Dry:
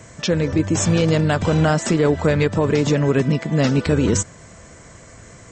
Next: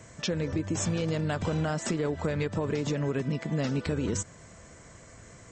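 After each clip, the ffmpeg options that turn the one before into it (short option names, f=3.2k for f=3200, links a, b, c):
-af "acompressor=threshold=-18dB:ratio=6,volume=-7.5dB"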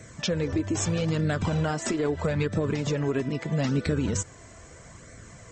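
-af "flanger=delay=0.5:depth=2.5:regen=-34:speed=0.78:shape=sinusoidal,volume=6.5dB"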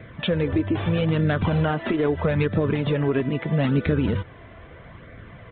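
-af "aresample=8000,aresample=44100,volume=4.5dB"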